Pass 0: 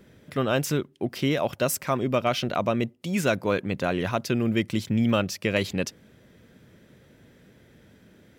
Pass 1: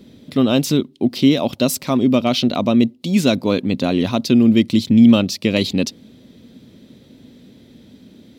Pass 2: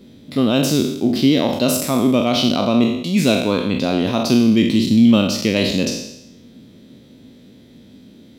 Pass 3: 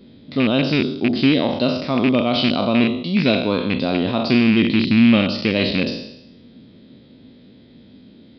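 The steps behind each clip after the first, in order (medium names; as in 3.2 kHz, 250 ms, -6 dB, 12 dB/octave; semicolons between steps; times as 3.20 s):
fifteen-band graphic EQ 250 Hz +12 dB, 1.6 kHz -9 dB, 4 kHz +11 dB; trim +4 dB
spectral sustain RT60 0.84 s; trim -2 dB
rattle on loud lows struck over -16 dBFS, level -10 dBFS; resampled via 11.025 kHz; trim -1.5 dB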